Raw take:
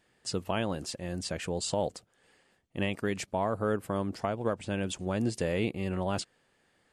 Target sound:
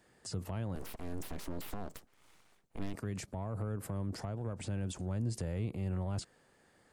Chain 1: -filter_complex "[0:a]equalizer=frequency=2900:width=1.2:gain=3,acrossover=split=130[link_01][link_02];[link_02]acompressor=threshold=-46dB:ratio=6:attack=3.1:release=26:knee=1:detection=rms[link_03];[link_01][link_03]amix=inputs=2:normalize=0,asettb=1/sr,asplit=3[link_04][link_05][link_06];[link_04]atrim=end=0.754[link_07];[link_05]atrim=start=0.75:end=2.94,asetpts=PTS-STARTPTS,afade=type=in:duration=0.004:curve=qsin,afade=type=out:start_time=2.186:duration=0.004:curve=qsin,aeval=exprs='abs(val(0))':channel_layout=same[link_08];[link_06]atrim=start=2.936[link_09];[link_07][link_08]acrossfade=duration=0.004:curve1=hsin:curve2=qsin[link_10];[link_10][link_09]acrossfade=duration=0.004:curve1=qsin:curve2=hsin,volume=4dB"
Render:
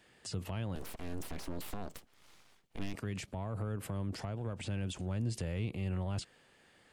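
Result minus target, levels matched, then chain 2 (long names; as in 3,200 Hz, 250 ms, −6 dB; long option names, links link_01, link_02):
4,000 Hz band +3.0 dB
-filter_complex "[0:a]equalizer=frequency=2900:width=1.2:gain=-7,acrossover=split=130[link_01][link_02];[link_02]acompressor=threshold=-46dB:ratio=6:attack=3.1:release=26:knee=1:detection=rms[link_03];[link_01][link_03]amix=inputs=2:normalize=0,asettb=1/sr,asplit=3[link_04][link_05][link_06];[link_04]atrim=end=0.754[link_07];[link_05]atrim=start=0.75:end=2.94,asetpts=PTS-STARTPTS,afade=type=in:duration=0.004:curve=qsin,afade=type=out:start_time=2.186:duration=0.004:curve=qsin,aeval=exprs='abs(val(0))':channel_layout=same[link_08];[link_06]atrim=start=2.936[link_09];[link_07][link_08]acrossfade=duration=0.004:curve1=hsin:curve2=qsin[link_10];[link_10][link_09]acrossfade=duration=0.004:curve1=qsin:curve2=hsin,volume=4dB"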